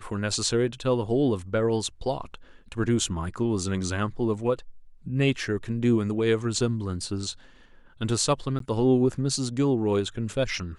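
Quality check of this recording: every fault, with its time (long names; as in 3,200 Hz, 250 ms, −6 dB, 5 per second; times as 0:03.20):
0:08.59–0:08.60: drop-out 13 ms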